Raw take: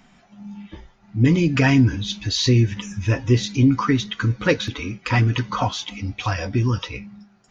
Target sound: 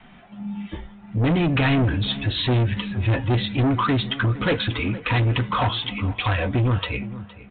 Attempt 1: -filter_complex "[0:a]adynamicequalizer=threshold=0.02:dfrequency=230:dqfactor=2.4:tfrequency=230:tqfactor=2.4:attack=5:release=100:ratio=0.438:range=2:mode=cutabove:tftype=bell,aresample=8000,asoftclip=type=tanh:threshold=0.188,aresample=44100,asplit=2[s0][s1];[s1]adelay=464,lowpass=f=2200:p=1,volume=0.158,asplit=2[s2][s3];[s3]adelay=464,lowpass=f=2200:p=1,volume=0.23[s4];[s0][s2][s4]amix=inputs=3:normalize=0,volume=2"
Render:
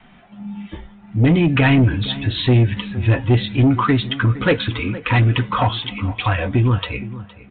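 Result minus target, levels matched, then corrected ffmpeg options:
saturation: distortion -7 dB
-filter_complex "[0:a]adynamicequalizer=threshold=0.02:dfrequency=230:dqfactor=2.4:tfrequency=230:tqfactor=2.4:attack=5:release=100:ratio=0.438:range=2:mode=cutabove:tftype=bell,aresample=8000,asoftclip=type=tanh:threshold=0.0708,aresample=44100,asplit=2[s0][s1];[s1]adelay=464,lowpass=f=2200:p=1,volume=0.158,asplit=2[s2][s3];[s3]adelay=464,lowpass=f=2200:p=1,volume=0.23[s4];[s0][s2][s4]amix=inputs=3:normalize=0,volume=2"

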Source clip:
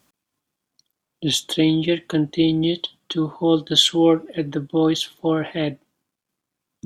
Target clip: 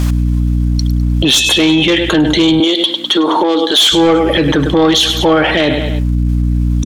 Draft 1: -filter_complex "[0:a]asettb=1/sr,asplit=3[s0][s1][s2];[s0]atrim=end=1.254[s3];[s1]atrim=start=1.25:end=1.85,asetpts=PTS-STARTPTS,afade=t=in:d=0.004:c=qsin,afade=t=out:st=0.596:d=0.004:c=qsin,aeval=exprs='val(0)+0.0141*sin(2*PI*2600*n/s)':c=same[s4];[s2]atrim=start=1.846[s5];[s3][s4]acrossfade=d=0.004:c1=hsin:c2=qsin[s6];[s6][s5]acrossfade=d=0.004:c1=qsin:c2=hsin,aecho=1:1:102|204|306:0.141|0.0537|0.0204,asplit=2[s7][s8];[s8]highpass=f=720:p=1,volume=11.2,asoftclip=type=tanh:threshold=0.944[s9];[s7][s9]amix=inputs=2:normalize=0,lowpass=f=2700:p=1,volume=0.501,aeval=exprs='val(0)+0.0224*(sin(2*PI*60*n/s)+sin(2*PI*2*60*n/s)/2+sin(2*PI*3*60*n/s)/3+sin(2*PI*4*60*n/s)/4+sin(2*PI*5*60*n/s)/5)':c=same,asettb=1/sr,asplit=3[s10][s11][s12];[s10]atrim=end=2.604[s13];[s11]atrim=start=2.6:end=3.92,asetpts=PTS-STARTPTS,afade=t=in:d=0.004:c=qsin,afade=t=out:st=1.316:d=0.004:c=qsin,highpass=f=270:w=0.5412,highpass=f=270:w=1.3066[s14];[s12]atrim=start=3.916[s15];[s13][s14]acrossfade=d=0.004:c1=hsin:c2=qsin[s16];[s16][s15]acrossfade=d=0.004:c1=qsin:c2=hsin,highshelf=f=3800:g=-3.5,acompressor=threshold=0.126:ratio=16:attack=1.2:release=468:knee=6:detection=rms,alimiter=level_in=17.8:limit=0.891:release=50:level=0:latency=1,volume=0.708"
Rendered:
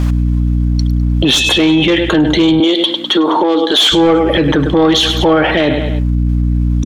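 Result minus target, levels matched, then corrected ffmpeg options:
8 kHz band -4.0 dB
-filter_complex "[0:a]asettb=1/sr,asplit=3[s0][s1][s2];[s0]atrim=end=1.254[s3];[s1]atrim=start=1.25:end=1.85,asetpts=PTS-STARTPTS,afade=t=in:d=0.004:c=qsin,afade=t=out:st=0.596:d=0.004:c=qsin,aeval=exprs='val(0)+0.0141*sin(2*PI*2600*n/s)':c=same[s4];[s2]atrim=start=1.846[s5];[s3][s4]acrossfade=d=0.004:c1=hsin:c2=qsin[s6];[s6][s5]acrossfade=d=0.004:c1=qsin:c2=hsin,aecho=1:1:102|204|306:0.141|0.0537|0.0204,asplit=2[s7][s8];[s8]highpass=f=720:p=1,volume=11.2,asoftclip=type=tanh:threshold=0.944[s9];[s7][s9]amix=inputs=2:normalize=0,lowpass=f=2700:p=1,volume=0.501,aeval=exprs='val(0)+0.0224*(sin(2*PI*60*n/s)+sin(2*PI*2*60*n/s)/2+sin(2*PI*3*60*n/s)/3+sin(2*PI*4*60*n/s)/4+sin(2*PI*5*60*n/s)/5)':c=same,asettb=1/sr,asplit=3[s10][s11][s12];[s10]atrim=end=2.604[s13];[s11]atrim=start=2.6:end=3.92,asetpts=PTS-STARTPTS,afade=t=in:d=0.004:c=qsin,afade=t=out:st=1.316:d=0.004:c=qsin,highpass=f=270:w=0.5412,highpass=f=270:w=1.3066[s14];[s12]atrim=start=3.916[s15];[s13][s14]acrossfade=d=0.004:c1=hsin:c2=qsin[s16];[s16][s15]acrossfade=d=0.004:c1=qsin:c2=hsin,highshelf=f=3800:g=7,acompressor=threshold=0.126:ratio=16:attack=1.2:release=468:knee=6:detection=rms,alimiter=level_in=17.8:limit=0.891:release=50:level=0:latency=1,volume=0.708"

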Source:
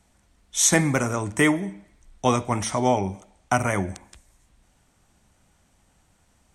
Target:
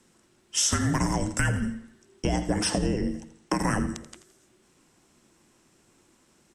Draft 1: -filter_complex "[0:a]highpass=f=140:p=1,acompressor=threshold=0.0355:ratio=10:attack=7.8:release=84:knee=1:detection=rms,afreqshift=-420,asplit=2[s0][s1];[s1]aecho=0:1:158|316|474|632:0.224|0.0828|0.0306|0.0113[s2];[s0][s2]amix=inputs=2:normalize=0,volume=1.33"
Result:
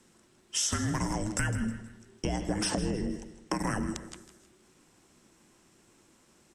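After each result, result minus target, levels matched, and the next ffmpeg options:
echo 74 ms late; compression: peak gain reduction +5.5 dB
-filter_complex "[0:a]highpass=f=140:p=1,acompressor=threshold=0.0355:ratio=10:attack=7.8:release=84:knee=1:detection=rms,afreqshift=-420,asplit=2[s0][s1];[s1]aecho=0:1:84|168|252|336:0.224|0.0828|0.0306|0.0113[s2];[s0][s2]amix=inputs=2:normalize=0,volume=1.33"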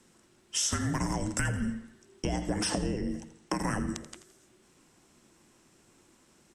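compression: peak gain reduction +5.5 dB
-filter_complex "[0:a]highpass=f=140:p=1,acompressor=threshold=0.0708:ratio=10:attack=7.8:release=84:knee=1:detection=rms,afreqshift=-420,asplit=2[s0][s1];[s1]aecho=0:1:84|168|252|336:0.224|0.0828|0.0306|0.0113[s2];[s0][s2]amix=inputs=2:normalize=0,volume=1.33"

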